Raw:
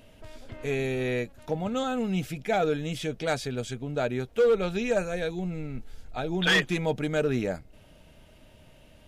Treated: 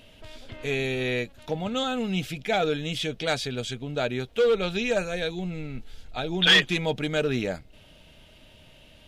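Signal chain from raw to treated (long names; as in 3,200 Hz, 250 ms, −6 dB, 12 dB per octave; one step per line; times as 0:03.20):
parametric band 3,400 Hz +9 dB 1.2 octaves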